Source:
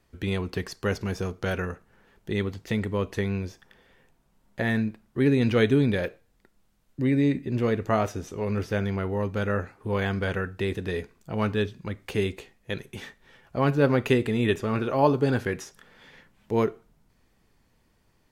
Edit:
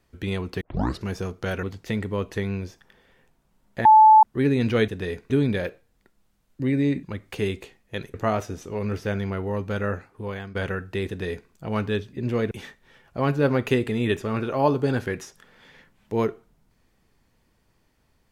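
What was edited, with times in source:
0.61 tape start 0.42 s
1.63–2.44 cut
4.66–5.04 bleep 869 Hz -8.5 dBFS
7.42–7.8 swap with 11.79–12.9
9.59–10.21 fade out, to -13.5 dB
10.74–11.16 copy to 5.69

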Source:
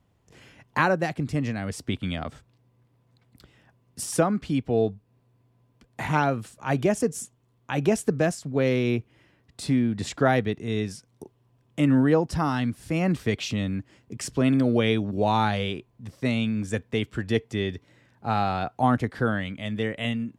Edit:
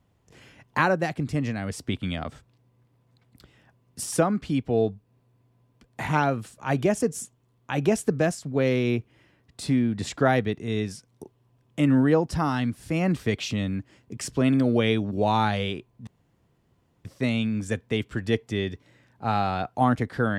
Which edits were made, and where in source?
16.07 insert room tone 0.98 s

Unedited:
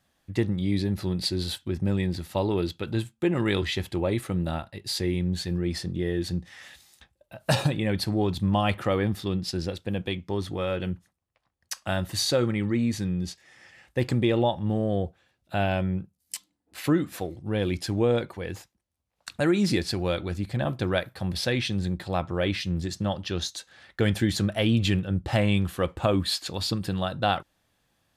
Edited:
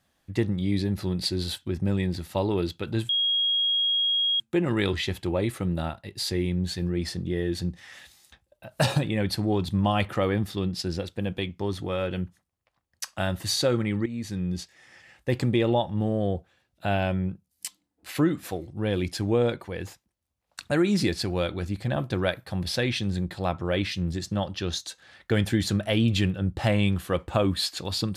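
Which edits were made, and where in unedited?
3.09 add tone 3280 Hz -21 dBFS 1.31 s
12.75–13.18 fade in, from -13.5 dB

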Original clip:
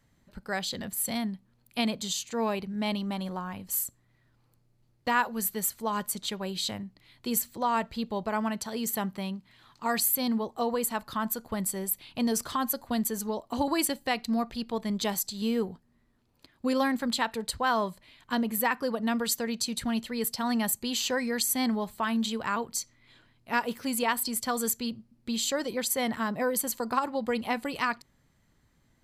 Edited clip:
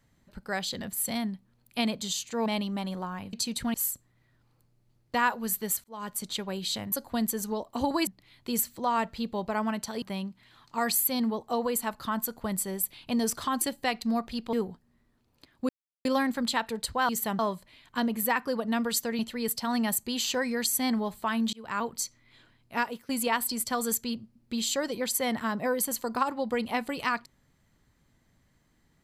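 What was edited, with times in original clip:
2.46–2.8 cut
5.77–6.18 fade in linear
8.8–9.1 move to 17.74
12.69–13.84 move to 6.85
14.76–15.54 cut
16.7 insert silence 0.36 s
19.54–19.95 move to 3.67
22.29–22.57 fade in
23.52–23.85 fade out linear, to -19.5 dB

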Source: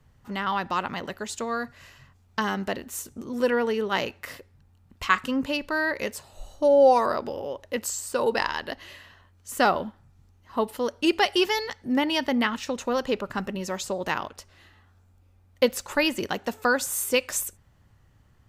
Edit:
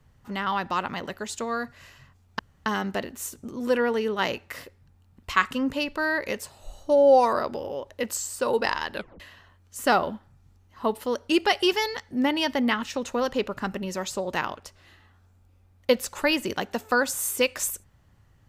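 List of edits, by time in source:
2.39 insert room tone 0.27 s
8.68 tape stop 0.25 s

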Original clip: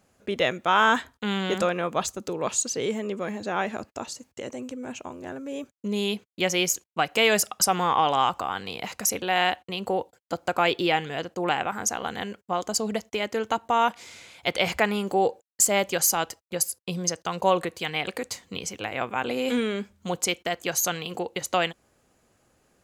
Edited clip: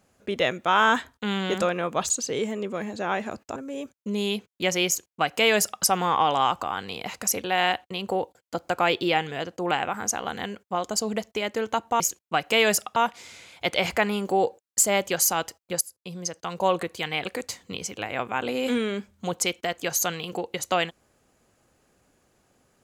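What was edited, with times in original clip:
2.1–2.57 cut
4.03–5.34 cut
6.65–7.61 copy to 13.78
16.63–17.68 fade in, from -12.5 dB

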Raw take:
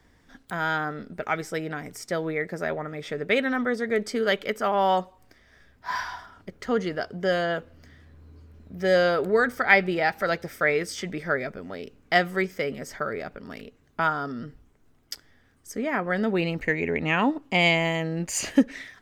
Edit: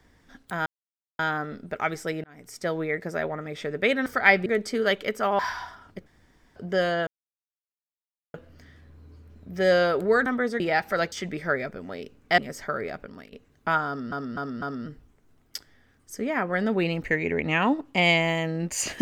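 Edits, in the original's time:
0.66 insert silence 0.53 s
1.71–2.14 fade in
3.53–3.87 swap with 9.5–9.9
4.8–5.9 cut
6.57–7.07 room tone
7.58 insert silence 1.27 s
10.42–10.93 cut
12.19–12.7 cut
13.36–13.64 fade out, to -14.5 dB
14.19–14.44 loop, 4 plays

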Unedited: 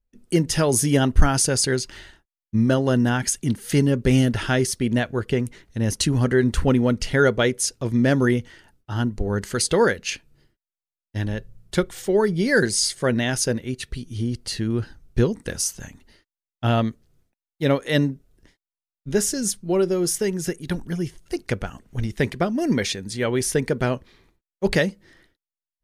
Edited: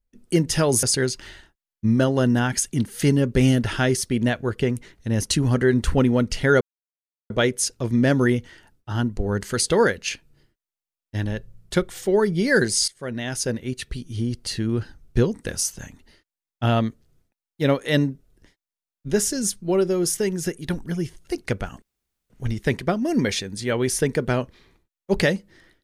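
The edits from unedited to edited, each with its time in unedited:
0.83–1.53 cut
7.31 insert silence 0.69 s
12.89–13.72 fade in, from -18.5 dB
21.83 insert room tone 0.48 s

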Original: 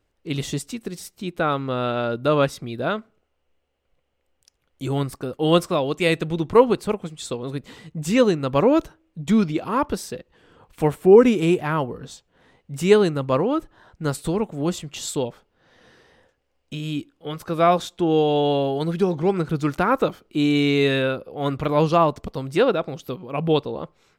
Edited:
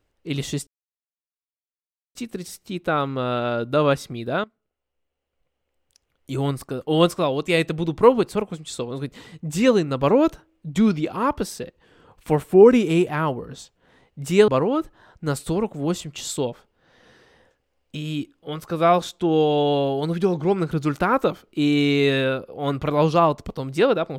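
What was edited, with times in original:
0.67 insert silence 1.48 s
2.96–4.88 fade in, from -17.5 dB
13–13.26 cut

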